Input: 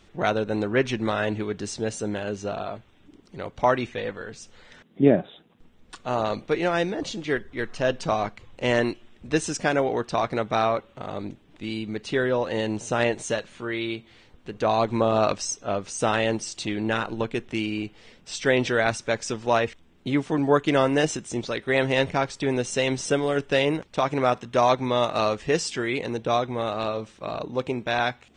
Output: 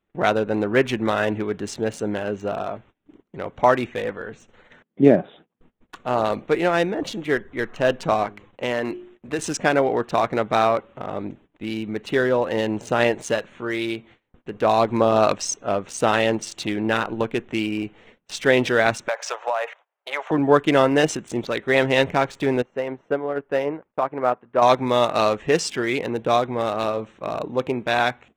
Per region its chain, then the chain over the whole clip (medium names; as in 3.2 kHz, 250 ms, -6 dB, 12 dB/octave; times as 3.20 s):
8.23–9.39 s: bass shelf 120 Hz -7.5 dB + de-hum 51.21 Hz, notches 8 + compression 3:1, threshold -24 dBFS
19.08–20.31 s: elliptic band-pass 580–6900 Hz + peaking EQ 910 Hz +9 dB 2.3 oct + compression 10:1, threshold -23 dBFS
22.62–24.62 s: low-pass 1.5 kHz + bass shelf 230 Hz -10 dB + upward expansion, over -42 dBFS
whole clip: local Wiener filter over 9 samples; gate -50 dBFS, range -24 dB; bass shelf 110 Hz -8 dB; trim +4.5 dB